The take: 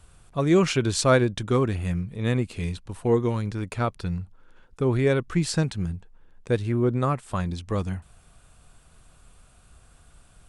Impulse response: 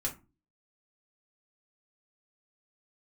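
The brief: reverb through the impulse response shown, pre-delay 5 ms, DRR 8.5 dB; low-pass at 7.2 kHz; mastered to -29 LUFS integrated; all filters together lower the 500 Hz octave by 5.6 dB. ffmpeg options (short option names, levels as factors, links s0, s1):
-filter_complex "[0:a]lowpass=7200,equalizer=f=500:t=o:g=-7.5,asplit=2[s0][s1];[1:a]atrim=start_sample=2205,adelay=5[s2];[s1][s2]afir=irnorm=-1:irlink=0,volume=0.282[s3];[s0][s3]amix=inputs=2:normalize=0,volume=0.794"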